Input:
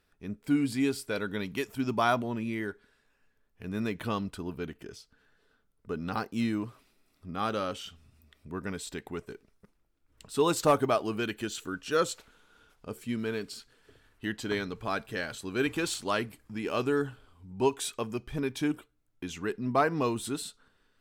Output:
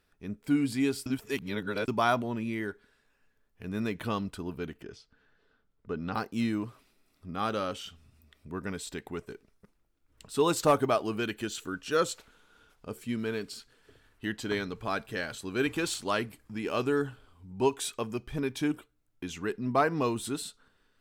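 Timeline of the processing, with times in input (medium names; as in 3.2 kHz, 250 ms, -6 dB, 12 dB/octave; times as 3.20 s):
1.06–1.88 s: reverse
4.82–6.15 s: Bessel low-pass 4.2 kHz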